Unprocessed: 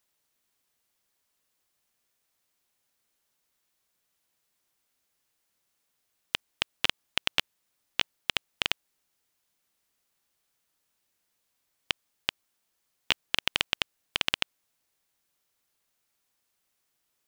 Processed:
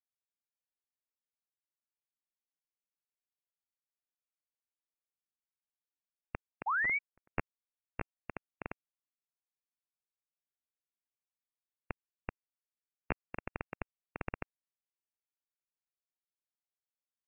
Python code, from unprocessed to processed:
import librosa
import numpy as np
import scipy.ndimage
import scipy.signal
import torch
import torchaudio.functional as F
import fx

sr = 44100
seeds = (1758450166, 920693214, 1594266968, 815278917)

y = fx.overflow_wrap(x, sr, gain_db=14.5, at=(6.7, 7.36))
y = fx.spec_paint(y, sr, seeds[0], shape='fall', start_s=6.66, length_s=0.33, low_hz=390.0, high_hz=2000.0, level_db=-27.0)
y = fx.freq_invert(y, sr, carrier_hz=2700)
y = fx.upward_expand(y, sr, threshold_db=-42.0, expansion=2.5)
y = y * librosa.db_to_amplitude(-3.5)